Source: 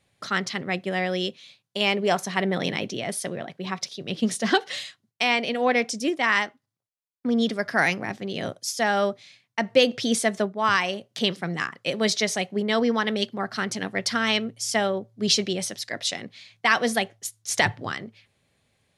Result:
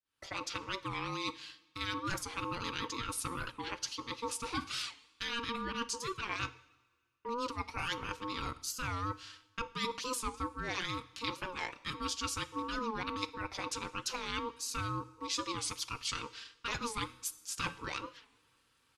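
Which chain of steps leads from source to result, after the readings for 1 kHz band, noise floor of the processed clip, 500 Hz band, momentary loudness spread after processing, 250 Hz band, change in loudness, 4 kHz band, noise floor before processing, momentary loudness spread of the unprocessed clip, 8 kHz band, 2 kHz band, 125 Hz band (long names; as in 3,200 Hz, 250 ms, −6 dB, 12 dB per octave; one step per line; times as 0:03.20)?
−10.0 dB, −72 dBFS, −18.5 dB, 5 LU, −16.0 dB, −13.0 dB, −11.5 dB, −78 dBFS, 10 LU, −9.0 dB, −14.5 dB, −9.5 dB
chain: fade in at the beginning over 0.65 s
high-pass filter 340 Hz 12 dB per octave
comb filter 4.8 ms, depth 70%
dynamic equaliser 1,200 Hz, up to −7 dB, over −35 dBFS, Q 1
reversed playback
downward compressor 5 to 1, threshold −32 dBFS, peak gain reduction 15 dB
reversed playback
ring modulation 700 Hz
coupled-rooms reverb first 0.85 s, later 2.3 s, from −18 dB, DRR 14.5 dB
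wow of a warped record 45 rpm, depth 160 cents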